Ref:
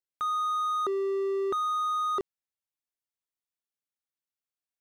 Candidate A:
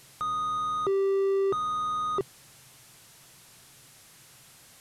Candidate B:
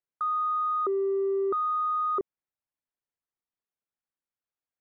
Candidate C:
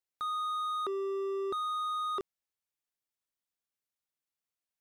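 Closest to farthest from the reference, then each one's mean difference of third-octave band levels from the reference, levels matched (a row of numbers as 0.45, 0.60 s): C, B, A; 1.5, 4.5, 8.0 dB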